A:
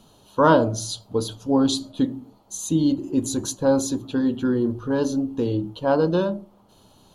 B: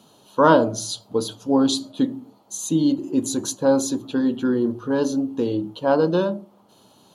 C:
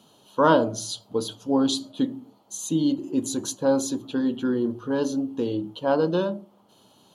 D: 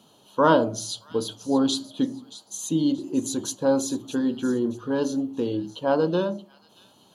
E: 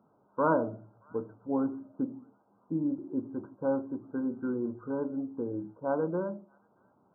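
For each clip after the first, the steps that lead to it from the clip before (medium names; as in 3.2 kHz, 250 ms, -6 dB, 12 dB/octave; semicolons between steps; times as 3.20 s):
high-pass 160 Hz 12 dB/octave; trim +1.5 dB
peaking EQ 3.1 kHz +4.5 dB 0.27 oct; trim -3.5 dB
feedback echo behind a high-pass 627 ms, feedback 33%, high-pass 2.9 kHz, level -14 dB
brick-wall FIR low-pass 1.6 kHz; trim -8 dB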